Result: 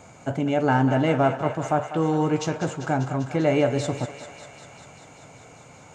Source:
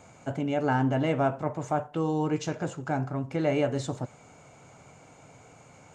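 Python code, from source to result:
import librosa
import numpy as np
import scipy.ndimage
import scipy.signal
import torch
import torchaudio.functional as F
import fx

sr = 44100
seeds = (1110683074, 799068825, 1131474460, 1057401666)

y = fx.echo_thinned(x, sr, ms=197, feedback_pct=79, hz=570.0, wet_db=-10.0)
y = F.gain(torch.from_numpy(y), 5.0).numpy()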